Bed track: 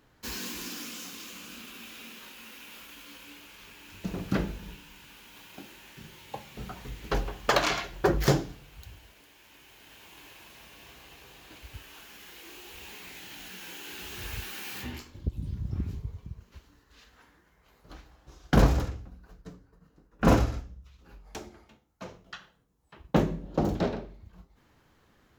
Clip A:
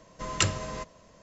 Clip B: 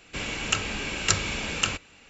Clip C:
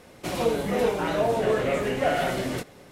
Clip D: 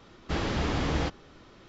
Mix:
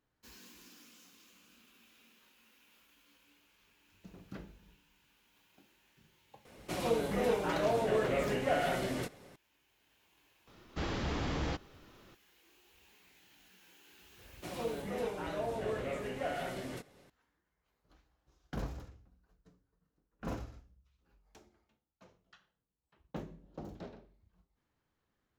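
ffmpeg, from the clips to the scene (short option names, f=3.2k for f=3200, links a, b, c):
-filter_complex "[3:a]asplit=2[a][b];[0:a]volume=-19dB[c];[4:a]asoftclip=type=tanh:threshold=-19dB[d];[a]atrim=end=2.91,asetpts=PTS-STARTPTS,volume=-7dB,afade=t=in:d=0.004:c=hsin,afade=t=out:st=2.906:d=0.004:c=hsin,adelay=6450[e];[d]atrim=end=1.68,asetpts=PTS-STARTPTS,volume=-6dB,afade=t=in:d=0.004:c=hsin,afade=t=out:st=1.676:d=0.004:c=hsin,adelay=10470[f];[b]atrim=end=2.91,asetpts=PTS-STARTPTS,volume=-13dB,afade=t=in:d=0.004:c=hsin,afade=t=out:st=2.906:d=0.004:c=hsin,adelay=14190[g];[c][e][f][g]amix=inputs=4:normalize=0"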